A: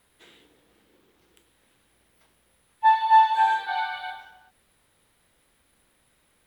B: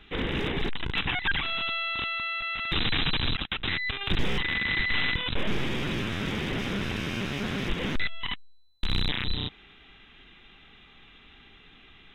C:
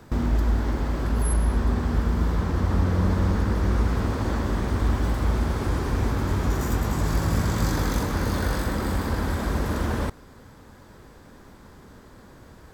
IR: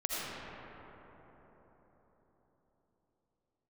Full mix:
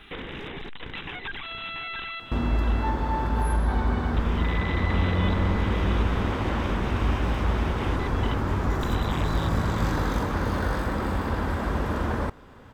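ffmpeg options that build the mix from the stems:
-filter_complex "[0:a]volume=0.447[s0];[1:a]acompressor=threshold=0.0501:ratio=6,volume=1.33,asplit=3[s1][s2][s3];[s1]atrim=end=2.2,asetpts=PTS-STARTPTS,afade=t=out:st=2.196:d=0.004:c=hsin[s4];[s2]atrim=start=2.2:end=4.14,asetpts=PTS-STARTPTS,volume=0[s5];[s3]atrim=start=4.14,asetpts=PTS-STARTPTS,afade=t=in:d=0.004:c=hsin[s6];[s4][s5][s6]concat=n=3:v=0:a=1,asplit=2[s7][s8];[s8]volume=0.15[s9];[2:a]highshelf=f=3600:g=-9.5,adelay=2200,volume=0.794[s10];[s0][s7]amix=inputs=2:normalize=0,acompressor=threshold=0.01:ratio=2.5,volume=1[s11];[s9]aecho=0:1:685|1370|2055|2740:1|0.31|0.0961|0.0298[s12];[s10][s11][s12]amix=inputs=3:normalize=0,equalizer=f=1100:t=o:w=2.3:g=4.5"

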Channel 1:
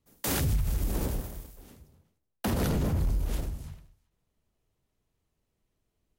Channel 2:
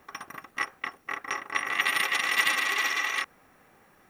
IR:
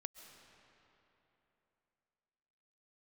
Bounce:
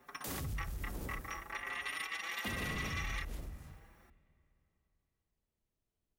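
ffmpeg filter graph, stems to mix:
-filter_complex "[0:a]volume=0.251,asplit=2[s0][s1];[s1]volume=0.422[s2];[1:a]alimiter=limit=0.106:level=0:latency=1:release=134,asplit=2[s3][s4];[s4]adelay=5.3,afreqshift=1.2[s5];[s3][s5]amix=inputs=2:normalize=1,volume=0.631,asplit=2[s6][s7];[s7]volume=0.224[s8];[2:a]atrim=start_sample=2205[s9];[s2][s8]amix=inputs=2:normalize=0[s10];[s10][s9]afir=irnorm=-1:irlink=0[s11];[s0][s6][s11]amix=inputs=3:normalize=0,acompressor=threshold=0.00794:ratio=1.5"

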